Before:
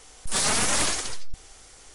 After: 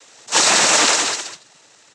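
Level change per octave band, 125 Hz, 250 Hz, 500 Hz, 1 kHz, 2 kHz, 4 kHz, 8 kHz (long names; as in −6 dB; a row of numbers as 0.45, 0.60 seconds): −3.5, +6.0, +10.5, +11.5, +11.5, +11.5, +9.5 decibels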